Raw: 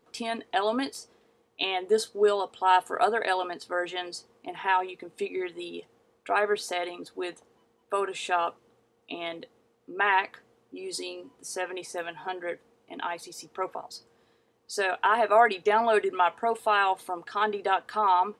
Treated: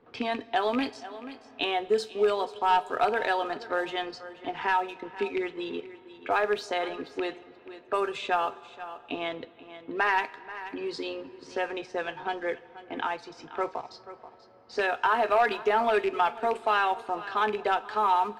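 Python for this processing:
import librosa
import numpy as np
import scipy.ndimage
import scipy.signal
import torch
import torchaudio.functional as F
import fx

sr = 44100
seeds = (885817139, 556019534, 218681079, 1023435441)

p1 = fx.rattle_buzz(x, sr, strikes_db=-37.0, level_db=-23.0)
p2 = scipy.signal.sosfilt(scipy.signal.butter(2, 5400.0, 'lowpass', fs=sr, output='sos'), p1)
p3 = fx.leveller(p2, sr, passes=1)
p4 = fx.low_shelf(p3, sr, hz=95.0, db=6.5)
p5 = fx.rev_double_slope(p4, sr, seeds[0], early_s=0.32, late_s=3.1, knee_db=-18, drr_db=13.0)
p6 = fx.env_lowpass(p5, sr, base_hz=2500.0, full_db=-20.0)
p7 = p6 + fx.echo_single(p6, sr, ms=483, db=-19.0, dry=0)
p8 = fx.band_squash(p7, sr, depth_pct=40)
y = p8 * librosa.db_to_amplitude(-4.0)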